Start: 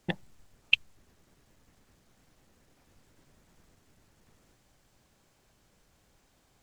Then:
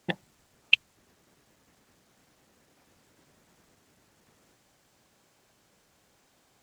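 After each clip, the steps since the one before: high-pass 200 Hz 6 dB/octave; trim +3 dB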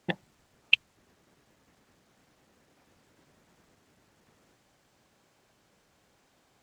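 treble shelf 5.6 kHz -6.5 dB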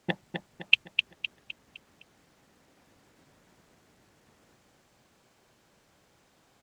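feedback delay 256 ms, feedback 42%, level -6 dB; trim +1 dB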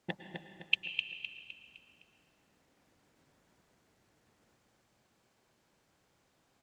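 reverberation RT60 1.7 s, pre-delay 98 ms, DRR 8.5 dB; trim -8.5 dB

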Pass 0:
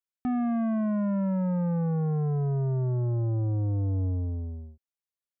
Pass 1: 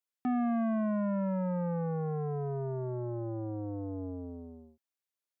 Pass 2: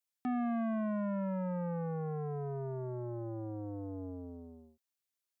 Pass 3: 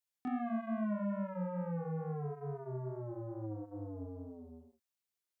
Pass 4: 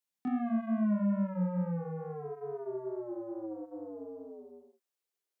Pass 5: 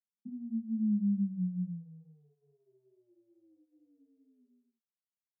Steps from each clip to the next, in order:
high-pass 240 Hz 12 dB/octave
treble shelf 2.3 kHz +7 dB; trim -4 dB
chorus 2.3 Hz, delay 18 ms, depth 6.5 ms; trim +1 dB
high-pass sweep 180 Hz -> 390 Hz, 1.57–2.74 s
Butterworth band-pass 200 Hz, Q 4.2

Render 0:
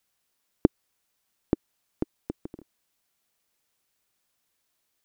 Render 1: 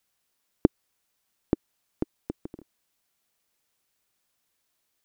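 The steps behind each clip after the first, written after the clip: no audible change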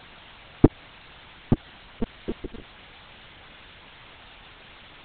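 in parallel at -8 dB: word length cut 6-bit, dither triangular; on the sum: monotone LPC vocoder at 8 kHz 230 Hz; trim +3.5 dB

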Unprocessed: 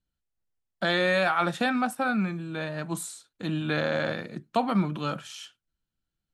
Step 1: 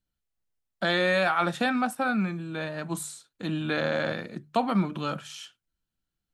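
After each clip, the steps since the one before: hum notches 50/100/150 Hz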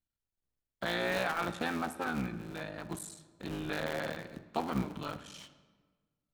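cycle switcher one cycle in 3, muted; on a send at -13.5 dB: reverberation RT60 1.4 s, pre-delay 49 ms; on the sum: trim -7 dB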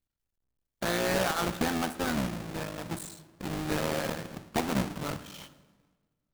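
square wave that keeps the level

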